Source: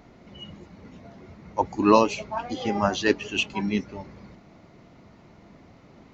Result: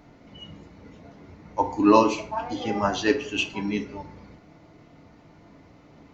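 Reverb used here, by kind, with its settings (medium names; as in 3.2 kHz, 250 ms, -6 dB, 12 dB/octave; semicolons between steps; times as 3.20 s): FDN reverb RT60 0.54 s, low-frequency decay 0.9×, high-frequency decay 0.65×, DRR 4 dB; trim -2 dB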